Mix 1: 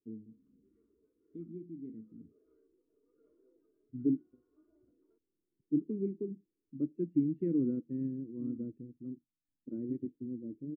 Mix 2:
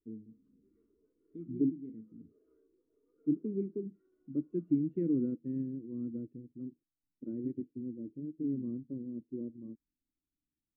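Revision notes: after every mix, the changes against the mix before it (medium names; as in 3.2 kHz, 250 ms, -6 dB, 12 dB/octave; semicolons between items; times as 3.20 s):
second voice: entry -2.45 s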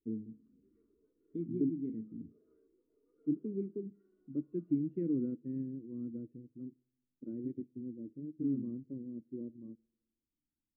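first voice +5.5 dB; second voice -3.5 dB; reverb: on, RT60 1.5 s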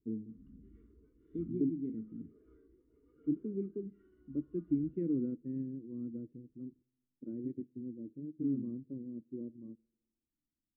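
background: remove band-pass filter 610 Hz, Q 1.6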